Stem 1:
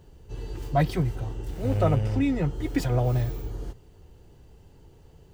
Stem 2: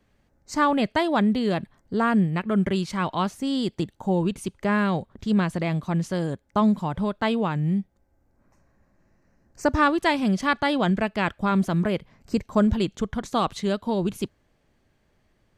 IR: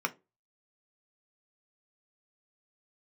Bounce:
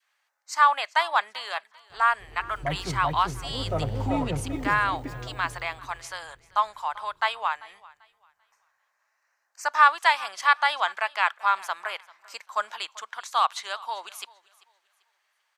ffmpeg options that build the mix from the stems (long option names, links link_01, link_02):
-filter_complex "[0:a]adelay=1900,volume=-5dB,afade=type=out:start_time=4.61:duration=0.33:silence=0.375837,asplit=2[link_01][link_02];[link_02]volume=-7dB[link_03];[1:a]highpass=frequency=950:width=0.5412,highpass=frequency=950:width=1.3066,volume=1.5dB,asplit=3[link_04][link_05][link_06];[link_05]volume=-21.5dB[link_07];[link_06]apad=whole_len=318970[link_08];[link_01][link_08]sidechaincompress=threshold=-30dB:ratio=8:attack=40:release=1410[link_09];[link_03][link_07]amix=inputs=2:normalize=0,aecho=0:1:391|782|1173|1564:1|0.3|0.09|0.027[link_10];[link_09][link_04][link_10]amix=inputs=3:normalize=0,adynamicequalizer=threshold=0.0141:dfrequency=830:dqfactor=0.73:tfrequency=830:tqfactor=0.73:attack=5:release=100:ratio=0.375:range=3:mode=boostabove:tftype=bell"